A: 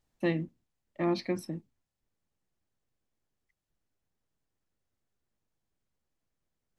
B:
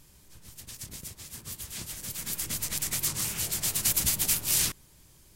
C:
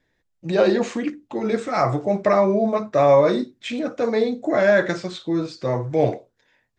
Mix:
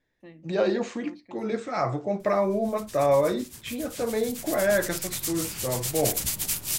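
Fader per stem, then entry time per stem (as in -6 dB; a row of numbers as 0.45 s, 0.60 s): -19.0 dB, -2.0 dB, -6.5 dB; 0.00 s, 2.20 s, 0.00 s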